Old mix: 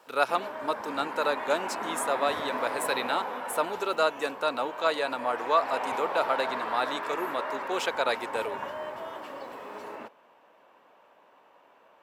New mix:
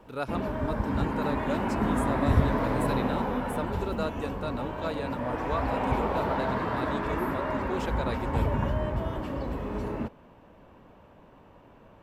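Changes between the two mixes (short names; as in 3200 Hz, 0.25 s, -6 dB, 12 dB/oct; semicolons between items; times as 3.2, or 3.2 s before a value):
speech -10.5 dB; master: remove HPF 630 Hz 12 dB/oct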